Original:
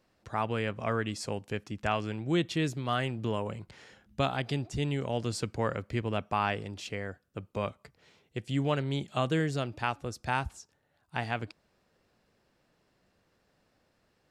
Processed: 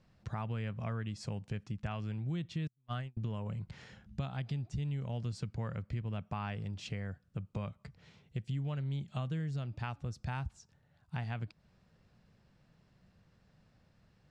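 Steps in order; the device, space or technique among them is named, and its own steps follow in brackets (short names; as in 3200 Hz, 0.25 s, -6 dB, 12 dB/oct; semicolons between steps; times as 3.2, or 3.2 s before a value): 2.67–3.17 gate -28 dBFS, range -43 dB; jukebox (LPF 7000 Hz 12 dB/oct; resonant low shelf 230 Hz +9.5 dB, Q 1.5; compressor 4:1, threshold -36 dBFS, peak gain reduction 15.5 dB); gain -1 dB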